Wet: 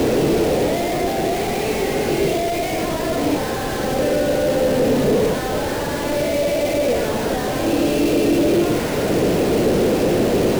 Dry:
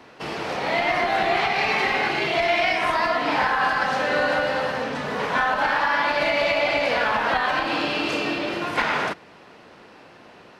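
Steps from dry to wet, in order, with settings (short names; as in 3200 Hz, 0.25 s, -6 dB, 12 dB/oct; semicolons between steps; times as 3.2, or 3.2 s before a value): infinite clipping; resonant low shelf 700 Hz +13.5 dB, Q 1.5; gain -4 dB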